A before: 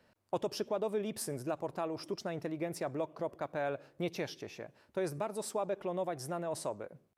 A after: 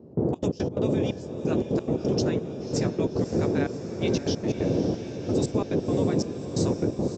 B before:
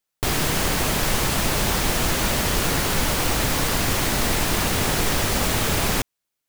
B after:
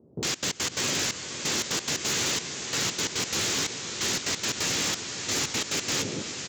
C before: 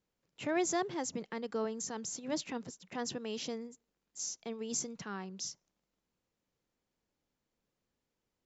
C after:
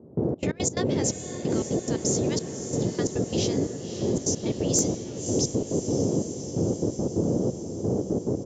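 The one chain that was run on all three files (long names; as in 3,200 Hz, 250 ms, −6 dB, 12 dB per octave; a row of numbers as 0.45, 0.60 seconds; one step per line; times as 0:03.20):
downsampling to 16,000 Hz
first difference
double-tracking delay 14 ms −6.5 dB
noise in a band 86–490 Hz −42 dBFS
gate pattern "..xx.x.x.xxxx.." 176 BPM −24 dB
parametric band 5,400 Hz −3 dB 1.6 octaves
on a send: feedback delay with all-pass diffusion 572 ms, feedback 69%, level −10.5 dB
on the sum: wave folding −27 dBFS
in parallel at −3 dB: brickwall limiter −34.5 dBFS
on the sum: loudness normalisation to −27 LKFS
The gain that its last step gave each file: +14.0, +4.5, +13.0 decibels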